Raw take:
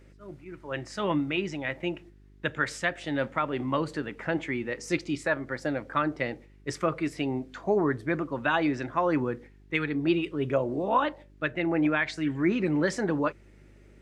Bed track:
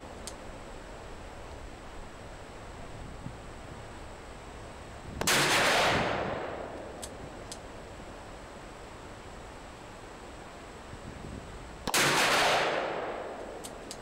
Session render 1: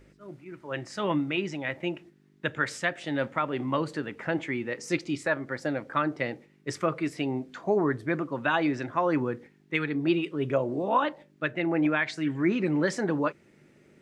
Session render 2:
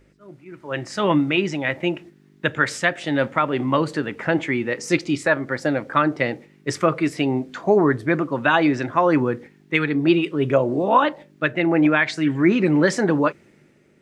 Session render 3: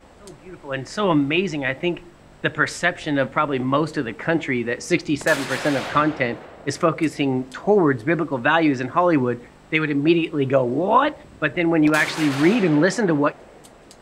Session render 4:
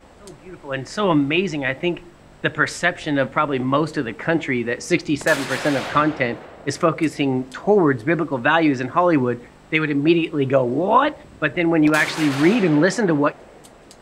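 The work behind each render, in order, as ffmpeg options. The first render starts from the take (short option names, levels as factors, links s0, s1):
-af "bandreject=f=50:t=h:w=4,bandreject=f=100:t=h:w=4"
-af "dynaudnorm=f=120:g=11:m=2.82"
-filter_complex "[1:a]volume=0.596[s0];[0:a][s0]amix=inputs=2:normalize=0"
-af "volume=1.12"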